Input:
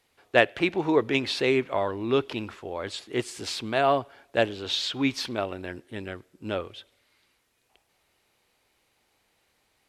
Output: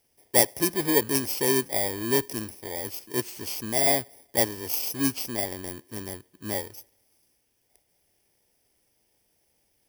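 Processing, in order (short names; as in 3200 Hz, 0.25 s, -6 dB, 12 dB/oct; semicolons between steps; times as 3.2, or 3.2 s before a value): FFT order left unsorted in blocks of 32 samples; bell 1100 Hz -5.5 dB 0.32 oct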